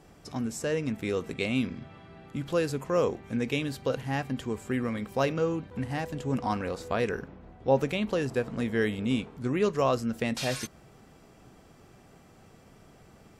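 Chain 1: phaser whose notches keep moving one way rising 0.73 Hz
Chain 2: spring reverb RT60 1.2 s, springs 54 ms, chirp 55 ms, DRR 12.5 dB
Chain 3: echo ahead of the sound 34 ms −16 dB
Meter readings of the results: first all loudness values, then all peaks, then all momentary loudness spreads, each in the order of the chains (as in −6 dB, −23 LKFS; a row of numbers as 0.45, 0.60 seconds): −31.5, −30.0, −30.0 LKFS; −14.0, −11.5, −11.5 dBFS; 8, 8, 8 LU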